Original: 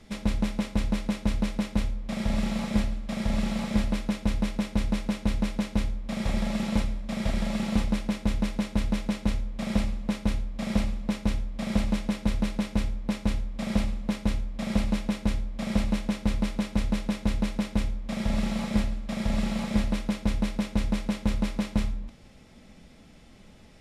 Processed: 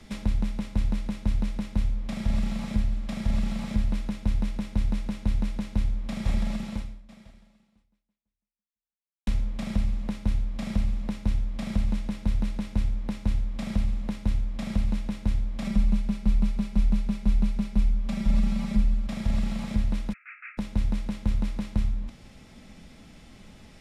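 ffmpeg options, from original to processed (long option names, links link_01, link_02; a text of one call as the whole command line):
ffmpeg -i in.wav -filter_complex "[0:a]asettb=1/sr,asplit=3[link_01][link_02][link_03];[link_01]atrim=end=15.644[link_04];[link_02]atrim=start=15.64:end=19.07,asetpts=PTS-STARTPTS,afade=type=in:duration=0.004:curve=qsin,afade=type=out:start_time=3.426:duration=0.004:curve=qsin,aecho=1:1:5.1:0.92,atrim=end_sample=151263[link_05];[link_03]atrim=start=19.066[link_06];[link_04][link_05]acrossfade=duration=0.004:curve1=hsin:curve2=qsin[link_07];[link_07][link_06]acrossfade=duration=0.004:curve1=qsin:curve2=hsin,asplit=3[link_08][link_09][link_10];[link_08]afade=type=out:start_time=20.12:duration=0.02[link_11];[link_09]asuperpass=centerf=1800:order=20:qfactor=1.3,afade=type=in:start_time=20.12:duration=0.02,afade=type=out:start_time=20.57:duration=0.02[link_12];[link_10]afade=type=in:start_time=20.57:duration=0.02[link_13];[link_11][link_12][link_13]amix=inputs=3:normalize=0,asplit=2[link_14][link_15];[link_14]atrim=end=9.27,asetpts=PTS-STARTPTS,afade=type=out:start_time=6.55:duration=2.72:curve=exp[link_16];[link_15]atrim=start=9.27,asetpts=PTS-STARTPTS,afade=type=in:duration=0.004:curve=hsin[link_17];[link_16][link_17]concat=n=2:v=0:a=1,equalizer=frequency=500:width=1.5:gain=-3.5,acrossover=split=150[link_18][link_19];[link_19]acompressor=threshold=-38dB:ratio=5[link_20];[link_18][link_20]amix=inputs=2:normalize=0,volume=3.5dB" out.wav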